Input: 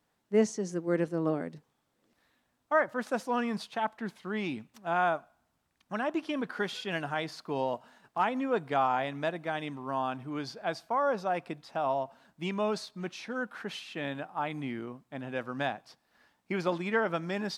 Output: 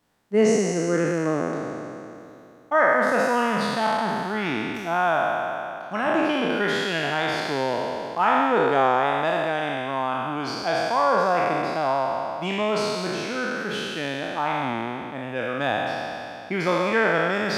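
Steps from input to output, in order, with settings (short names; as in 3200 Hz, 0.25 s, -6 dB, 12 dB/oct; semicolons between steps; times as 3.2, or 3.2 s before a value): spectral trails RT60 2.77 s; gain +4 dB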